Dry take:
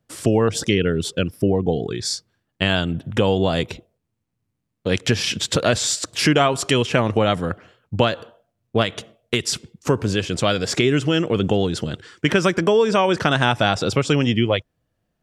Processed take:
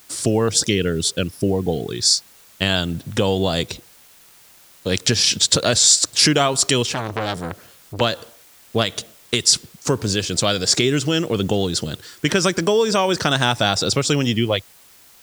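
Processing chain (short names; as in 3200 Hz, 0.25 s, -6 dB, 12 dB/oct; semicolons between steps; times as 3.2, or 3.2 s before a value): band shelf 6200 Hz +10.5 dB; requantised 8-bit, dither triangular; 6.91–8.01 core saturation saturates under 2000 Hz; gain -1 dB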